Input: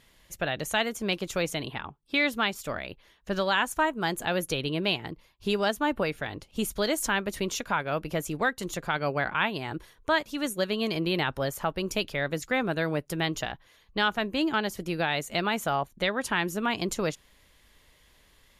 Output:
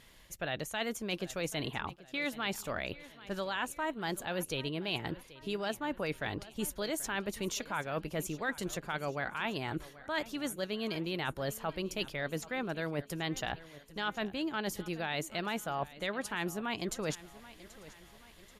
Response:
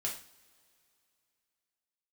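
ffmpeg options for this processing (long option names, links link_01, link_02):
-af "areverse,acompressor=threshold=-34dB:ratio=6,areverse,aecho=1:1:783|1566|2349|3132:0.126|0.0604|0.029|0.0139,volume=1.5dB"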